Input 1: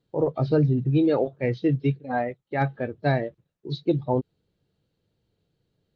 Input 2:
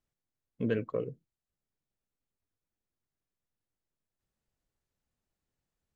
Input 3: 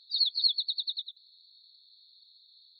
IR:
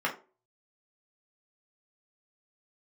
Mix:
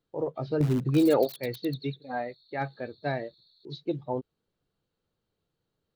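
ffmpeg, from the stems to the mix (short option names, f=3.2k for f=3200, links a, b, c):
-filter_complex "[0:a]lowshelf=f=190:g=-9,volume=1.5dB[a];[1:a]highshelf=f=1.9k:t=q:w=3:g=-12,acrossover=split=360|3000[b][c][d];[c]acompressor=threshold=-32dB:ratio=6[e];[b][e][d]amix=inputs=3:normalize=0,volume=-1dB,asplit=2[f][g];[2:a]aphaser=in_gain=1:out_gain=1:delay=3.1:decay=0.28:speed=0.95:type=sinusoidal,adelay=850,volume=-4.5dB[h];[g]apad=whole_len=262608[i];[a][i]sidechaingate=range=-7dB:threshold=-59dB:ratio=16:detection=peak[j];[f][h]amix=inputs=2:normalize=0,aeval=exprs='(mod(23.7*val(0)+1,2)-1)/23.7':c=same,acompressor=threshold=-43dB:ratio=6,volume=0dB[k];[j][k]amix=inputs=2:normalize=0"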